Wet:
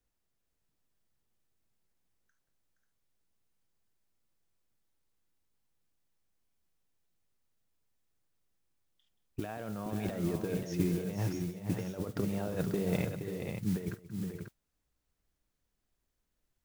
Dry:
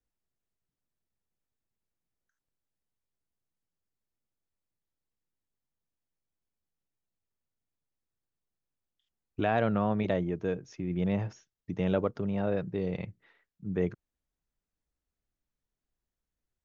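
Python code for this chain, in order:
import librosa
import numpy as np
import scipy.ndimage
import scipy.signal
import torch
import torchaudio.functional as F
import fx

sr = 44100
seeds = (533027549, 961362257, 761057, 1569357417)

y = fx.over_compress(x, sr, threshold_db=-33.0, ratio=-0.5)
y = fx.echo_multitap(y, sr, ms=(49, 179, 471, 540), db=(-17.0, -16.5, -8.0, -7.5))
y = fx.mod_noise(y, sr, seeds[0], snr_db=19)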